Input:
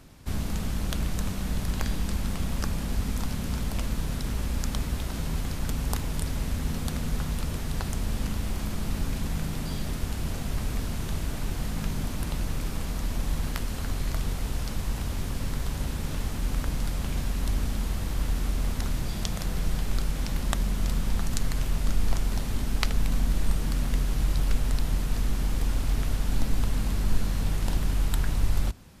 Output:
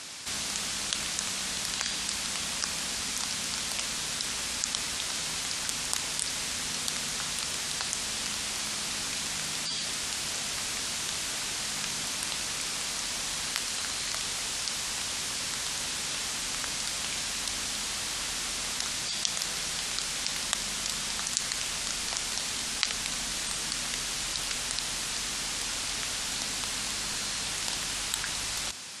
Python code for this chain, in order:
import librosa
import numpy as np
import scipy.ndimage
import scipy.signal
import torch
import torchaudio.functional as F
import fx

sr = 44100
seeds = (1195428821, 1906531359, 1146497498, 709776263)

y = fx.weighting(x, sr, curve='ITU-R 468')
y = fx.spec_gate(y, sr, threshold_db=-20, keep='strong')
y = fx.env_flatten(y, sr, amount_pct=50)
y = y * librosa.db_to_amplitude(-7.0)